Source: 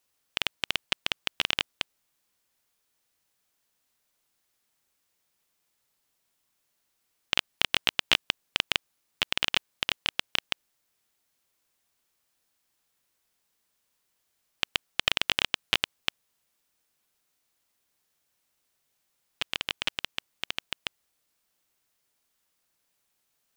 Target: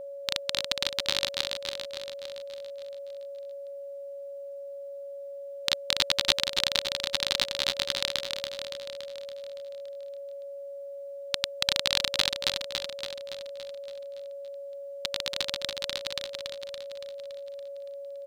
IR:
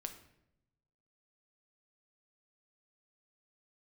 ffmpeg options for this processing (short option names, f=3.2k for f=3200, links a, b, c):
-af "aecho=1:1:365|730|1095|1460|1825|2190|2555|2920:0.562|0.321|0.183|0.104|0.0594|0.0338|0.0193|0.011,asetrate=56889,aresample=44100,aeval=exprs='val(0)+0.0141*sin(2*PI*560*n/s)':c=same"